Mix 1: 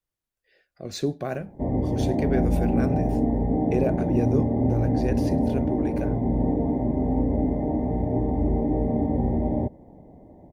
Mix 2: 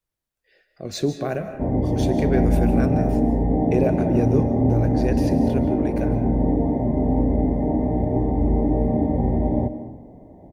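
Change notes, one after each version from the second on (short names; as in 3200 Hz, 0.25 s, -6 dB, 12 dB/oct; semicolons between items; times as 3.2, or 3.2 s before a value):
reverb: on, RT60 0.80 s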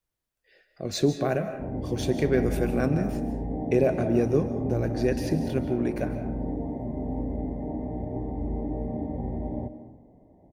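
background -11.0 dB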